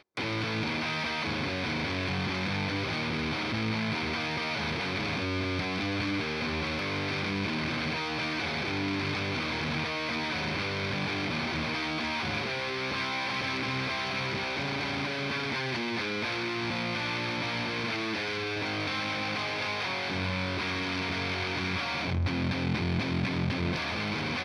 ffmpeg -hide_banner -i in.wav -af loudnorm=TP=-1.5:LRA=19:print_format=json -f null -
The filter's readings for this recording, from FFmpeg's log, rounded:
"input_i" : "-30.4",
"input_tp" : "-16.9",
"input_lra" : "0.7",
"input_thresh" : "-40.4",